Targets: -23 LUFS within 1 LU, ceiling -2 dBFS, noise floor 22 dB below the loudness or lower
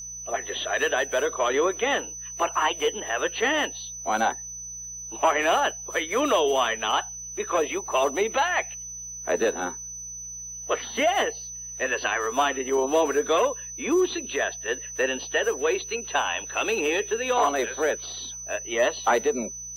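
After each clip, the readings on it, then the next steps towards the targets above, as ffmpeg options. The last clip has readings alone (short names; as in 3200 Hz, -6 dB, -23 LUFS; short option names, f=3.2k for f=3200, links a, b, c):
hum 60 Hz; harmonics up to 180 Hz; hum level -51 dBFS; steady tone 6000 Hz; tone level -35 dBFS; loudness -25.5 LUFS; peak -9.5 dBFS; loudness target -23.0 LUFS
-> -af "bandreject=f=60:t=h:w=4,bandreject=f=120:t=h:w=4,bandreject=f=180:t=h:w=4"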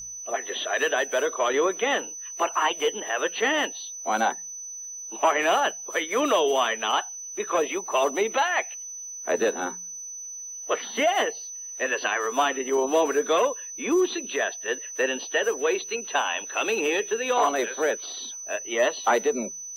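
hum none; steady tone 6000 Hz; tone level -35 dBFS
-> -af "bandreject=f=6k:w=30"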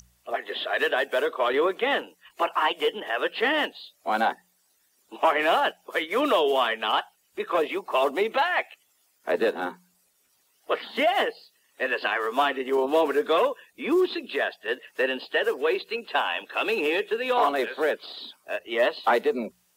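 steady tone none; loudness -25.5 LUFS; peak -10.0 dBFS; loudness target -23.0 LUFS
-> -af "volume=2.5dB"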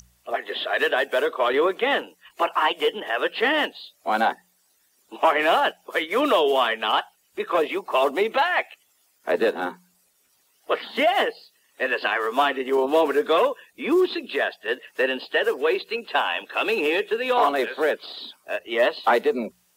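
loudness -23.0 LUFS; peak -7.5 dBFS; noise floor -65 dBFS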